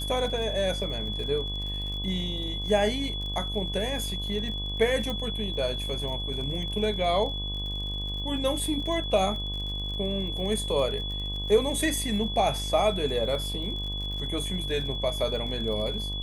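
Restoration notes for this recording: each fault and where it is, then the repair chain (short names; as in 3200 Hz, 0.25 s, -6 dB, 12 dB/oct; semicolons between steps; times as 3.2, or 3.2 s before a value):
buzz 50 Hz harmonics 23 -34 dBFS
crackle 51/s -36 dBFS
tone 3400 Hz -33 dBFS
5.1 pop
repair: de-click; de-hum 50 Hz, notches 23; notch 3400 Hz, Q 30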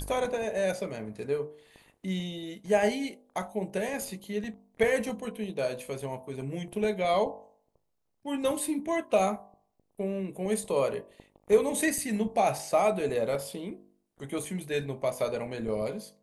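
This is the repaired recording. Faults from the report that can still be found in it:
none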